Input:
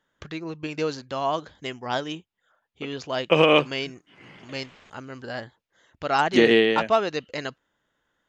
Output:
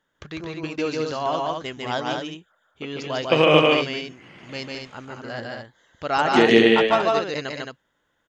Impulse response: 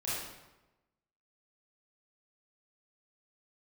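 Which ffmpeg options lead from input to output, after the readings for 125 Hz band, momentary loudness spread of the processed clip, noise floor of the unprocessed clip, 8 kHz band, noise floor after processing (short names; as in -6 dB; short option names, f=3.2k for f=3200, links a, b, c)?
+3.5 dB, 21 LU, -77 dBFS, n/a, -72 dBFS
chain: -af "aecho=1:1:148.7|218.7:0.794|0.562"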